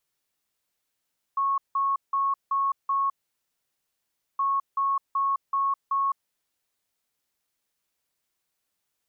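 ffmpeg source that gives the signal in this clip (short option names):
-f lavfi -i "aevalsrc='0.0841*sin(2*PI*1100*t)*clip(min(mod(mod(t,3.02),0.38),0.21-mod(mod(t,3.02),0.38))/0.005,0,1)*lt(mod(t,3.02),1.9)':d=6.04:s=44100"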